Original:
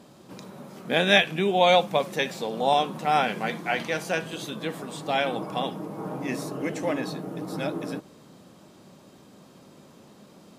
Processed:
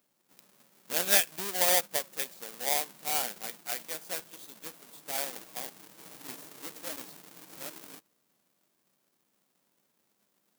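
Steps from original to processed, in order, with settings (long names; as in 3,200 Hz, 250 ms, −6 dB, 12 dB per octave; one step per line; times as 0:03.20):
each half-wave held at its own peak
power curve on the samples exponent 1.4
RIAA equalisation recording
level −12 dB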